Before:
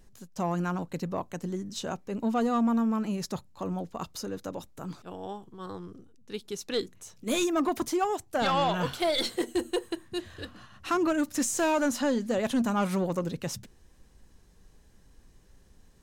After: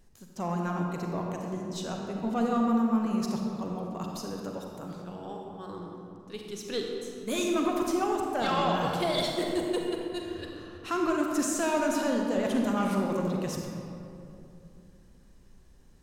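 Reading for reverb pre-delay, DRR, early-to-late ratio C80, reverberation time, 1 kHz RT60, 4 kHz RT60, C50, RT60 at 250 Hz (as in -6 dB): 36 ms, 0.0 dB, 2.0 dB, 2.7 s, 2.5 s, 1.4 s, 1.0 dB, 3.3 s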